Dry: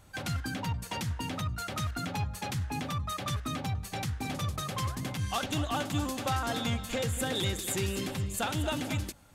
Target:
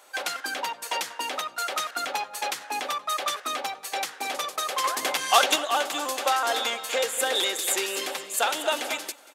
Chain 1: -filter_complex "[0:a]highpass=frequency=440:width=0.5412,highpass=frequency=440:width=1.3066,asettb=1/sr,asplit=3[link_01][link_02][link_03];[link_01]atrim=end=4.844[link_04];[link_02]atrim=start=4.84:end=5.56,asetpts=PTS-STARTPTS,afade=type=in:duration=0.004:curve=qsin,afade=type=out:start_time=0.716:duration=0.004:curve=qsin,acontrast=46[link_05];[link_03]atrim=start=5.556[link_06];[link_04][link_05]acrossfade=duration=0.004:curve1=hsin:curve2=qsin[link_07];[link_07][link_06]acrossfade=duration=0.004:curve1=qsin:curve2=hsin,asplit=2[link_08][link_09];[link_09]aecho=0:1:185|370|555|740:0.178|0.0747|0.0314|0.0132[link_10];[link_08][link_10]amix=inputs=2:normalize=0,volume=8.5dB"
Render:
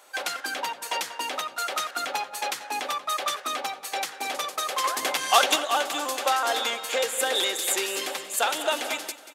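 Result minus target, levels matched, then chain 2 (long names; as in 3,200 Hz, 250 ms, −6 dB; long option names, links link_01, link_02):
echo-to-direct +7 dB
-filter_complex "[0:a]highpass=frequency=440:width=0.5412,highpass=frequency=440:width=1.3066,asettb=1/sr,asplit=3[link_01][link_02][link_03];[link_01]atrim=end=4.844[link_04];[link_02]atrim=start=4.84:end=5.56,asetpts=PTS-STARTPTS,afade=type=in:duration=0.004:curve=qsin,afade=type=out:start_time=0.716:duration=0.004:curve=qsin,acontrast=46[link_05];[link_03]atrim=start=5.556[link_06];[link_04][link_05]acrossfade=duration=0.004:curve1=hsin:curve2=qsin[link_07];[link_07][link_06]acrossfade=duration=0.004:curve1=qsin:curve2=hsin,asplit=2[link_08][link_09];[link_09]aecho=0:1:185|370|555:0.0794|0.0334|0.014[link_10];[link_08][link_10]amix=inputs=2:normalize=0,volume=8.5dB"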